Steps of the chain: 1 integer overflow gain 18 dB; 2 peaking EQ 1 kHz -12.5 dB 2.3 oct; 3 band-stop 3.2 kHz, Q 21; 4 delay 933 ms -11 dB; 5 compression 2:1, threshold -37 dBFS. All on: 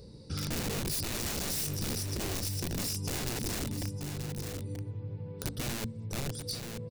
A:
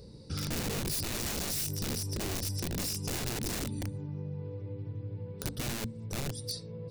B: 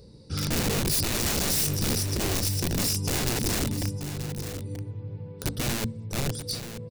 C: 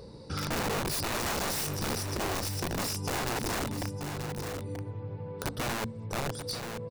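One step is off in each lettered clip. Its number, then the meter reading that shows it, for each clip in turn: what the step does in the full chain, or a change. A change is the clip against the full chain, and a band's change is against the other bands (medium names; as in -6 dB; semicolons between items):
4, momentary loudness spread change +1 LU; 5, mean gain reduction 5.0 dB; 2, 1 kHz band +9.0 dB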